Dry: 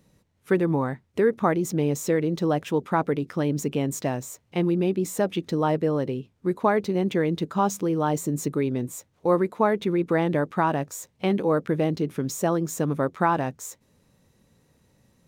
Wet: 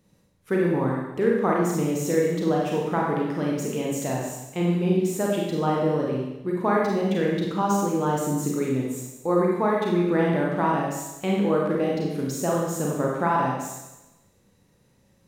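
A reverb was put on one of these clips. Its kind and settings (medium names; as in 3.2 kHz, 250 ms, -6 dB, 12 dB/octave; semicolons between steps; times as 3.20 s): Schroeder reverb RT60 1 s, combs from 31 ms, DRR -3 dB; trim -4 dB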